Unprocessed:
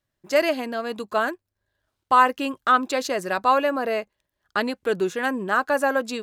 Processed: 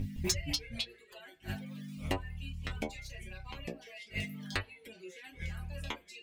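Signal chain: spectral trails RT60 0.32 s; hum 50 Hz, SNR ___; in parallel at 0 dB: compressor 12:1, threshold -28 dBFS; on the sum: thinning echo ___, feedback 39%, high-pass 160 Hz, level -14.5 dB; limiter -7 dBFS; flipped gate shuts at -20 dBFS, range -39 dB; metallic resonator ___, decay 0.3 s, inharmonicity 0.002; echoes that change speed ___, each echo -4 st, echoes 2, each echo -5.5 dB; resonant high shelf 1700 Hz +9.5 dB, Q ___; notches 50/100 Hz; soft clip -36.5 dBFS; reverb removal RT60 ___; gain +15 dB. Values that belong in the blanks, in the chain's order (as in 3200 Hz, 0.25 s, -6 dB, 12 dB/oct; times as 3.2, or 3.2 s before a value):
16 dB, 75 ms, 91 Hz, 0.163 s, 3, 0.85 s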